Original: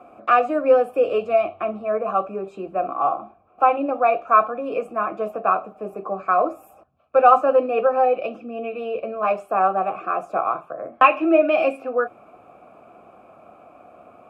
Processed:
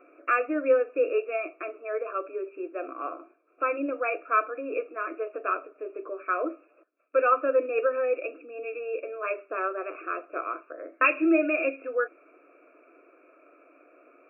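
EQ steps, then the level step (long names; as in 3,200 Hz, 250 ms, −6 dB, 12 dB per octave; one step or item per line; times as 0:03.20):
linear-phase brick-wall band-pass 270–2,800 Hz
parametric band 1,100 Hz −8.5 dB 0.28 octaves
phaser with its sweep stopped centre 1,900 Hz, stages 4
0.0 dB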